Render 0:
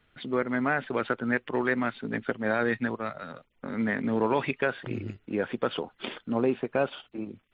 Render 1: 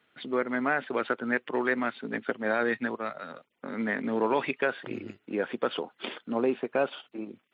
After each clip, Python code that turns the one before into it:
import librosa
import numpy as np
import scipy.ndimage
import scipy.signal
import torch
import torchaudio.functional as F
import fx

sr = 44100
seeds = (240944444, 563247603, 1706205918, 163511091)

y = scipy.signal.sosfilt(scipy.signal.butter(2, 230.0, 'highpass', fs=sr, output='sos'), x)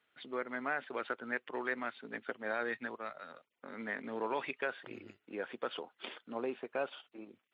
y = fx.peak_eq(x, sr, hz=180.0, db=-7.0, octaves=2.3)
y = F.gain(torch.from_numpy(y), -7.5).numpy()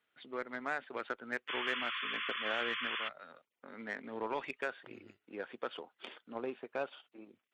y = fx.cheby_harmonics(x, sr, harmonics=(7,), levels_db=(-28,), full_scale_db=-20.5)
y = fx.spec_paint(y, sr, seeds[0], shape='noise', start_s=1.48, length_s=1.61, low_hz=1000.0, high_hz=3500.0, level_db=-38.0)
y = F.gain(torch.from_numpy(y), -1.0).numpy()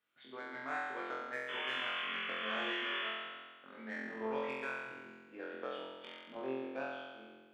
y = fx.room_flutter(x, sr, wall_m=3.9, rt60_s=1.4)
y = F.gain(torch.from_numpy(y), -7.5).numpy()